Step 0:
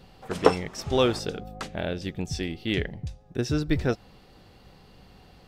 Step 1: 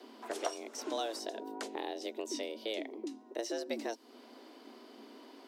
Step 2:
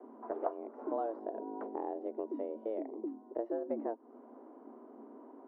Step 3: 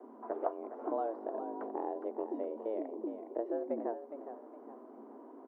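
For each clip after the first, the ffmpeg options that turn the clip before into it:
ffmpeg -i in.wav -filter_complex "[0:a]afreqshift=220,acrossover=split=720|4500[link_01][link_02][link_03];[link_01]acompressor=threshold=-37dB:ratio=4[link_04];[link_02]acompressor=threshold=-44dB:ratio=4[link_05];[link_03]acompressor=threshold=-42dB:ratio=4[link_06];[link_04][link_05][link_06]amix=inputs=3:normalize=0,volume=-1.5dB" out.wav
ffmpeg -i in.wav -af "lowpass=frequency=1100:width=0.5412,lowpass=frequency=1100:width=1.3066,volume=1.5dB" out.wav
ffmpeg -i in.wav -filter_complex "[0:a]lowshelf=frequency=110:gain=-9,asplit=2[link_01][link_02];[link_02]asplit=4[link_03][link_04][link_05][link_06];[link_03]adelay=412,afreqshift=41,volume=-10dB[link_07];[link_04]adelay=824,afreqshift=82,volume=-18.9dB[link_08];[link_05]adelay=1236,afreqshift=123,volume=-27.7dB[link_09];[link_06]adelay=1648,afreqshift=164,volume=-36.6dB[link_10];[link_07][link_08][link_09][link_10]amix=inputs=4:normalize=0[link_11];[link_01][link_11]amix=inputs=2:normalize=0,volume=1dB" out.wav

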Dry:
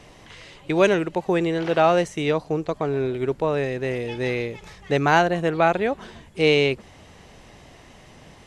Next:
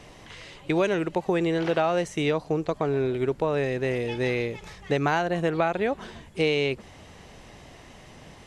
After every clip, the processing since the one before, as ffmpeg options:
ffmpeg -i in.wav -af "acompressor=threshold=-20dB:ratio=6" out.wav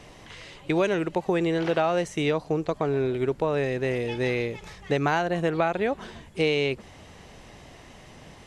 ffmpeg -i in.wav -af anull out.wav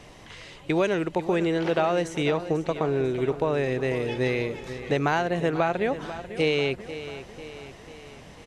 ffmpeg -i in.wav -af "aecho=1:1:493|986|1479|1972|2465|2958:0.224|0.121|0.0653|0.0353|0.019|0.0103" out.wav

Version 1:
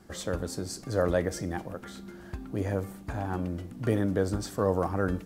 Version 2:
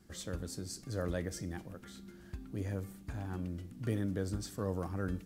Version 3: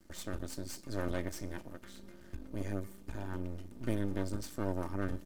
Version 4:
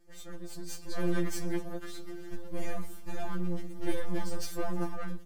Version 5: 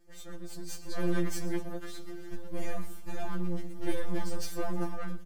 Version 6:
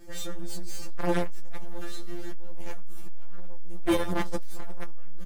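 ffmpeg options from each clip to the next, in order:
ffmpeg -i in.wav -af "equalizer=frequency=760:width_type=o:width=2.1:gain=-9.5,volume=-5dB" out.wav
ffmpeg -i in.wav -af "aeval=exprs='max(val(0),0)':channel_layout=same,aecho=1:1:3.3:0.41,volume=2.5dB" out.wav
ffmpeg -i in.wav -filter_complex "[0:a]dynaudnorm=framelen=230:gausssize=7:maxgain=12.5dB,asplit=2[link_01][link_02];[link_02]volume=22.5dB,asoftclip=hard,volume=-22.5dB,volume=-3dB[link_03];[link_01][link_03]amix=inputs=2:normalize=0,afftfilt=real='re*2.83*eq(mod(b,8),0)':imag='im*2.83*eq(mod(b,8),0)':win_size=2048:overlap=0.75,volume=-7.5dB" out.wav
ffmpeg -i in.wav -af "aecho=1:1:119:0.126" out.wav
ffmpeg -i in.wav -filter_complex "[0:a]aeval=exprs='0.188*sin(PI/2*3.55*val(0)/0.188)':channel_layout=same,asplit=2[link_01][link_02];[link_02]adelay=21,volume=-3.5dB[link_03];[link_01][link_03]amix=inputs=2:normalize=0,aeval=exprs='(tanh(7.08*val(0)+0.25)-tanh(0.25))/7.08':channel_layout=same" out.wav

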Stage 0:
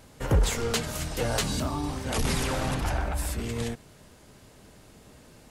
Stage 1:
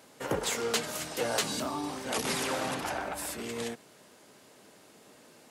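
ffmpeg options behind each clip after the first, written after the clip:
ffmpeg -i in.wav -af "highpass=270,volume=-1dB" out.wav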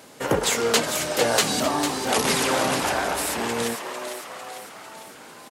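ffmpeg -i in.wav -filter_complex "[0:a]asplit=8[link_01][link_02][link_03][link_04][link_05][link_06][link_07][link_08];[link_02]adelay=450,afreqshift=140,volume=-8dB[link_09];[link_03]adelay=900,afreqshift=280,volume=-12.9dB[link_10];[link_04]adelay=1350,afreqshift=420,volume=-17.8dB[link_11];[link_05]adelay=1800,afreqshift=560,volume=-22.6dB[link_12];[link_06]adelay=2250,afreqshift=700,volume=-27.5dB[link_13];[link_07]adelay=2700,afreqshift=840,volume=-32.4dB[link_14];[link_08]adelay=3150,afreqshift=980,volume=-37.3dB[link_15];[link_01][link_09][link_10][link_11][link_12][link_13][link_14][link_15]amix=inputs=8:normalize=0,volume=9dB" out.wav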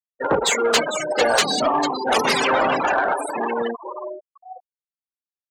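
ffmpeg -i in.wav -filter_complex "[0:a]bandreject=frequency=60:width_type=h:width=6,bandreject=frequency=120:width_type=h:width=6,afftfilt=real='re*gte(hypot(re,im),0.0891)':imag='im*gte(hypot(re,im),0.0891)':win_size=1024:overlap=0.75,asplit=2[link_01][link_02];[link_02]highpass=frequency=720:poles=1,volume=14dB,asoftclip=type=tanh:threshold=-6.5dB[link_03];[link_01][link_03]amix=inputs=2:normalize=0,lowpass=frequency=5300:poles=1,volume=-6dB" out.wav

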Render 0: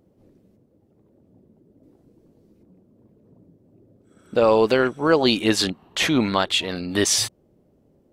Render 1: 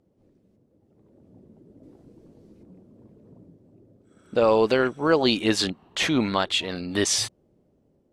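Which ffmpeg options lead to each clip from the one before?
ffmpeg -i in.wav -af "lowpass=10000,dynaudnorm=framelen=420:gausssize=5:maxgain=11dB,volume=-6.5dB" out.wav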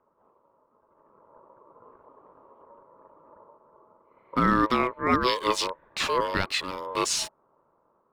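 ffmpeg -i in.wav -filter_complex "[0:a]acrossover=split=110|490|2200[link_01][link_02][link_03][link_04];[link_04]aeval=exprs='sgn(val(0))*max(abs(val(0))-0.00596,0)':channel_layout=same[link_05];[link_01][link_02][link_03][link_05]amix=inputs=4:normalize=0,aeval=exprs='val(0)*sin(2*PI*750*n/s)':channel_layout=same" out.wav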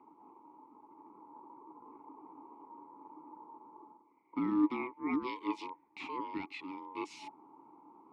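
ffmpeg -i in.wav -filter_complex "[0:a]areverse,acompressor=mode=upward:threshold=-27dB:ratio=2.5,areverse,asplit=3[link_01][link_02][link_03];[link_01]bandpass=frequency=300:width_type=q:width=8,volume=0dB[link_04];[link_02]bandpass=frequency=870:width_type=q:width=8,volume=-6dB[link_05];[link_03]bandpass=frequency=2240:width_type=q:width=8,volume=-9dB[link_06];[link_04][link_05][link_06]amix=inputs=3:normalize=0" out.wav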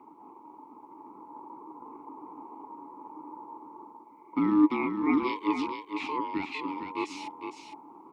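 ffmpeg -i in.wav -af "aecho=1:1:458:0.447,volume=7.5dB" out.wav

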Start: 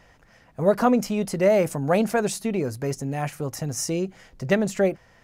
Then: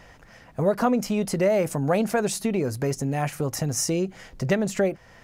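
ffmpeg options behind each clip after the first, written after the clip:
ffmpeg -i in.wav -af "acompressor=threshold=-30dB:ratio=2,volume=5.5dB" out.wav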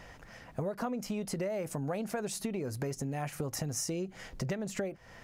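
ffmpeg -i in.wav -af "acompressor=threshold=-31dB:ratio=6,volume=-1.5dB" out.wav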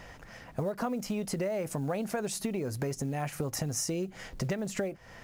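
ffmpeg -i in.wav -af "acrusher=bits=8:mode=log:mix=0:aa=0.000001,volume=2.5dB" out.wav

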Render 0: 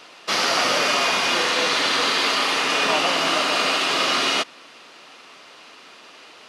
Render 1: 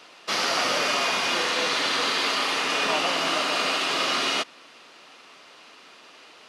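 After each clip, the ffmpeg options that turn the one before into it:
ffmpeg -i in.wav -af "highpass=69,volume=-4dB" out.wav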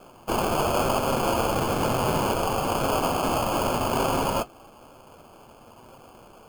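ffmpeg -i in.wav -af "acrusher=samples=23:mix=1:aa=0.000001,flanger=delay=7.8:depth=1.3:regen=-59:speed=1:shape=sinusoidal,equalizer=frequency=4200:width=0.73:gain=-4.5,volume=5dB" out.wav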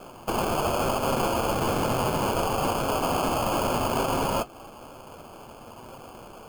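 ffmpeg -i in.wav -af "alimiter=limit=-22dB:level=0:latency=1:release=163,volume=5dB" out.wav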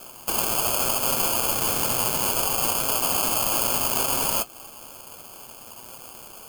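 ffmpeg -i in.wav -af "crystalizer=i=7.5:c=0,volume=-6.5dB" out.wav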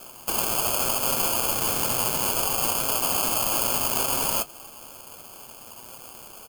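ffmpeg -i in.wav -af "aecho=1:1:133:0.0631,volume=-1dB" out.wav

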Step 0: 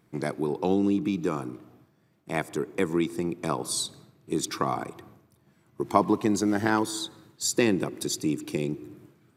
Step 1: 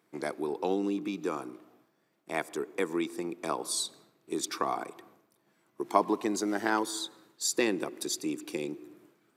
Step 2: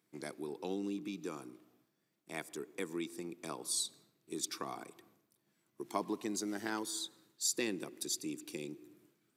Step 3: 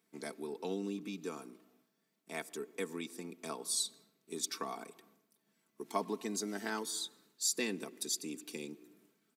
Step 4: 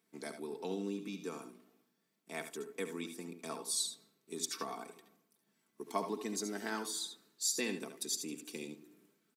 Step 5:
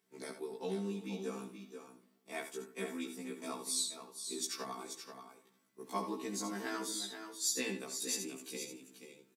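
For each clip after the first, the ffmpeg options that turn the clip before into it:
ffmpeg -i in.wav -af "highpass=320,volume=-2.5dB" out.wav
ffmpeg -i in.wav -af "equalizer=frequency=820:width=0.39:gain=-11,volume=-2dB" out.wav
ffmpeg -i in.wav -af "highpass=150,aecho=1:1:4.5:0.55" out.wav
ffmpeg -i in.wav -af "aecho=1:1:70|82:0.282|0.237,volume=-1dB" out.wav
ffmpeg -i in.wav -af "aecho=1:1:482:0.376,afftfilt=real='re*1.73*eq(mod(b,3),0)':imag='im*1.73*eq(mod(b,3),0)':win_size=2048:overlap=0.75,volume=2dB" out.wav

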